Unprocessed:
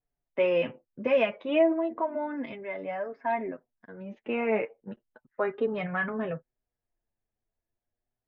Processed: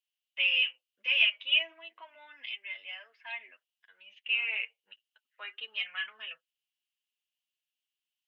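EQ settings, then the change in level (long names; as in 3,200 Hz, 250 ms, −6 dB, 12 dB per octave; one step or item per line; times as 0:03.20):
high-pass with resonance 2,900 Hz, resonance Q 7.9
0.0 dB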